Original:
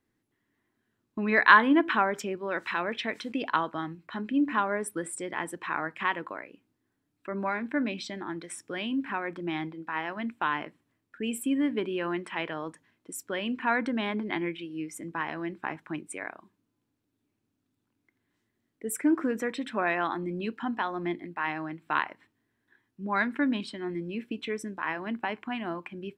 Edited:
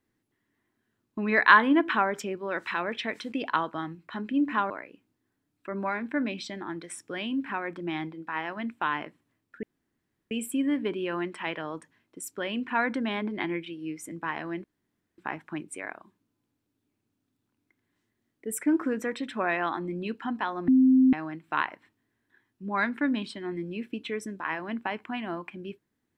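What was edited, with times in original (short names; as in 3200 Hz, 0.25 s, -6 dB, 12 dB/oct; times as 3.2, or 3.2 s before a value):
4.7–6.3 cut
11.23 insert room tone 0.68 s
15.56 insert room tone 0.54 s
21.06–21.51 bleep 260 Hz -15.5 dBFS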